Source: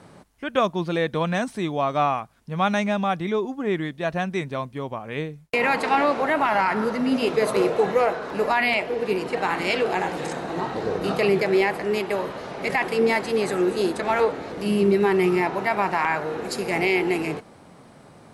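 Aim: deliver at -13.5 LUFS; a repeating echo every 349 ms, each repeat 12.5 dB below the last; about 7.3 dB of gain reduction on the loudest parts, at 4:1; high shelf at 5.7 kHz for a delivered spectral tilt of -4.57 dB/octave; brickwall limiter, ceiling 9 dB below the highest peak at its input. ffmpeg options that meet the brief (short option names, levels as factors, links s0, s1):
-af "highshelf=f=5700:g=-3.5,acompressor=threshold=0.0631:ratio=4,alimiter=limit=0.075:level=0:latency=1,aecho=1:1:349|698|1047:0.237|0.0569|0.0137,volume=7.94"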